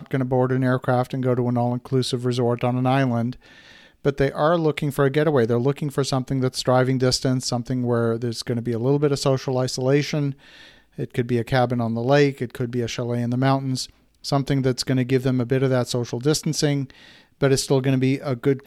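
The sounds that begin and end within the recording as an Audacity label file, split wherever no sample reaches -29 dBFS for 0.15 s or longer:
4.050000	10.320000	sound
10.990000	13.850000	sound
14.250000	16.900000	sound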